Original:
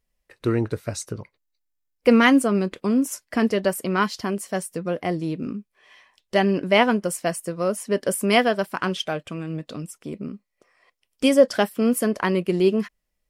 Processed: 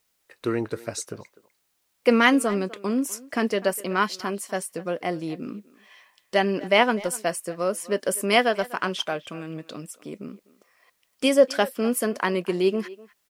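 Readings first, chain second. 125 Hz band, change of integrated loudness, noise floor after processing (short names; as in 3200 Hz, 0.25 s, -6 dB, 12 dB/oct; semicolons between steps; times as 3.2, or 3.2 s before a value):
-7.0 dB, -2.0 dB, -72 dBFS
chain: HPF 340 Hz 6 dB/oct; requantised 12-bit, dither triangular; speakerphone echo 0.25 s, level -18 dB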